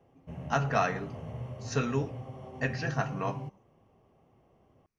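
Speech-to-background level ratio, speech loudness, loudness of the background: 8.5 dB, -32.5 LUFS, -41.0 LUFS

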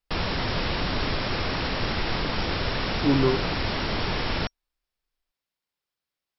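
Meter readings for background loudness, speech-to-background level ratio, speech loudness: -27.5 LUFS, 2.5 dB, -25.0 LUFS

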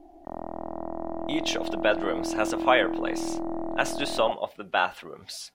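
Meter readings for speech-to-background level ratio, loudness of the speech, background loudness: 5.5 dB, -27.5 LUFS, -33.0 LUFS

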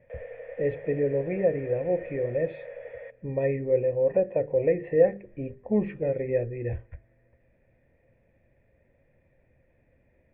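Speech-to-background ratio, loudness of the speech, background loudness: 14.0 dB, -27.5 LUFS, -41.5 LUFS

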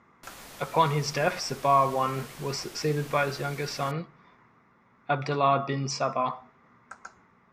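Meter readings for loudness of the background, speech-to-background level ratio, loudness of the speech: -45.0 LUFS, 17.5 dB, -27.5 LUFS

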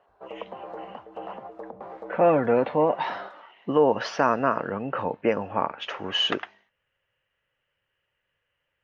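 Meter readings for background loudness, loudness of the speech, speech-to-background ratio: -41.0 LUFS, -24.5 LUFS, 16.5 dB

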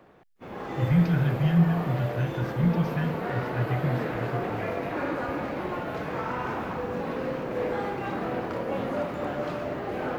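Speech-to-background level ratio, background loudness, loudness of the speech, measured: 4.5 dB, -31.5 LUFS, -27.0 LUFS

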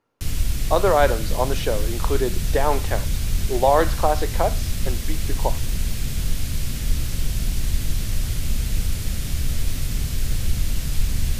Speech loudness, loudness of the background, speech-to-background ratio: -23.5 LUFS, -27.0 LUFS, 3.5 dB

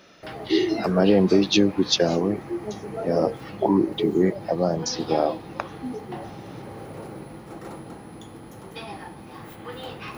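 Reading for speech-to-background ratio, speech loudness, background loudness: 16.0 dB, -22.5 LUFS, -38.5 LUFS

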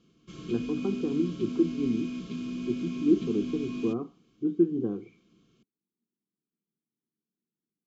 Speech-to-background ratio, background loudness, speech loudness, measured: 6.0 dB, -36.0 LUFS, -30.0 LUFS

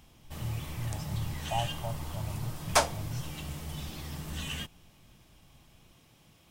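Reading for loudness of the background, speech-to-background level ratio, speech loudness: -36.0 LUFS, -3.5 dB, -39.5 LUFS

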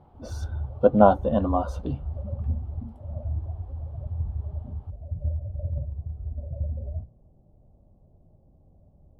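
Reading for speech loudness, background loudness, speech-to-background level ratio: -22.5 LUFS, -34.0 LUFS, 11.5 dB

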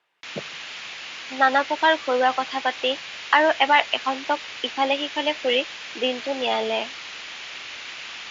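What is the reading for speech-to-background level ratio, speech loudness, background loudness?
11.5 dB, -22.5 LUFS, -34.0 LUFS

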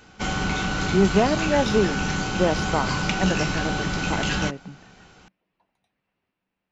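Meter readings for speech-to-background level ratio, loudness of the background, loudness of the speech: 0.5 dB, -25.5 LUFS, -25.0 LUFS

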